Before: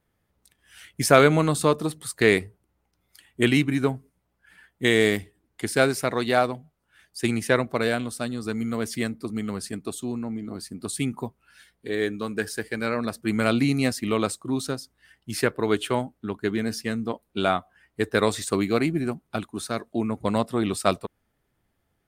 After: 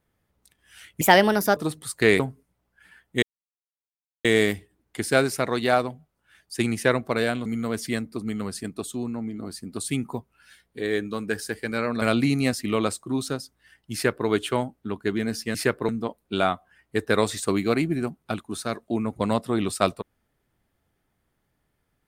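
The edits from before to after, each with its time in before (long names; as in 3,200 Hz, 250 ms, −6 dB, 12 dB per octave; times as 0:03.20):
0:01.01–0:01.76: play speed 135%
0:02.39–0:03.86: remove
0:04.89: splice in silence 1.02 s
0:08.10–0:08.54: remove
0:13.10–0:13.40: remove
0:15.32–0:15.66: duplicate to 0:16.93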